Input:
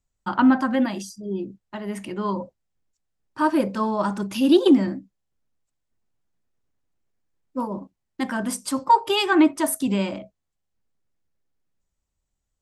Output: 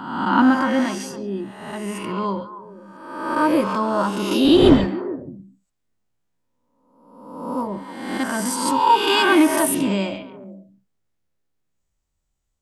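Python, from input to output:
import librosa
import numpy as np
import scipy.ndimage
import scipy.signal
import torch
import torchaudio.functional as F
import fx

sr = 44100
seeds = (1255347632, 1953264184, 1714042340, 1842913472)

y = fx.spec_swells(x, sr, rise_s=1.09)
y = fx.dmg_wind(y, sr, seeds[0], corner_hz=440.0, level_db=-21.0, at=(4.44, 4.86), fade=0.02)
y = fx.echo_stepped(y, sr, ms=140, hz=2900.0, octaves=-1.4, feedback_pct=70, wet_db=-7.5)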